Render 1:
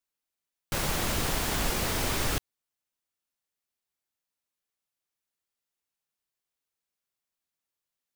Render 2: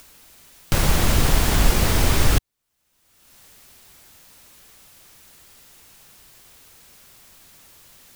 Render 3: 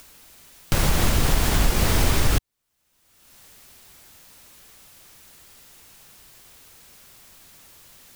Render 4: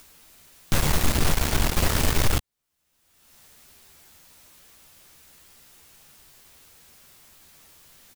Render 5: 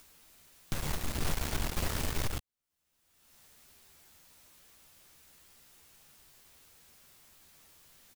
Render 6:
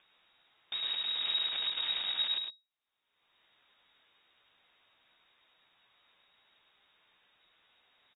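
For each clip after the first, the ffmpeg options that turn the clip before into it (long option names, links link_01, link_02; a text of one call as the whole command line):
ffmpeg -i in.wav -filter_complex "[0:a]lowshelf=frequency=150:gain=10,asplit=2[link_01][link_02];[link_02]acompressor=mode=upward:threshold=-22dB:ratio=2.5,volume=1dB[link_03];[link_01][link_03]amix=inputs=2:normalize=0" out.wav
ffmpeg -i in.wav -af "alimiter=limit=-8.5dB:level=0:latency=1:release=166" out.wav
ffmpeg -i in.wav -filter_complex "[0:a]asplit=2[link_01][link_02];[link_02]adelay=13,volume=-7dB[link_03];[link_01][link_03]amix=inputs=2:normalize=0,aeval=exprs='0.531*(cos(1*acos(clip(val(0)/0.531,-1,1)))-cos(1*PI/2))+0.0596*(cos(6*acos(clip(val(0)/0.531,-1,1)))-cos(6*PI/2))+0.119*(cos(8*acos(clip(val(0)/0.531,-1,1)))-cos(8*PI/2))':channel_layout=same,volume=-4dB" out.wav
ffmpeg -i in.wav -af "alimiter=limit=-15.5dB:level=0:latency=1:release=484,volume=-7dB" out.wav
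ffmpeg -i in.wav -filter_complex "[0:a]lowpass=frequency=3200:width_type=q:width=0.5098,lowpass=frequency=3200:width_type=q:width=0.6013,lowpass=frequency=3200:width_type=q:width=0.9,lowpass=frequency=3200:width_type=q:width=2.563,afreqshift=-3800,asplit=2[link_01][link_02];[link_02]aecho=0:1:104:0.531[link_03];[link_01][link_03]amix=inputs=2:normalize=0,volume=-3.5dB" out.wav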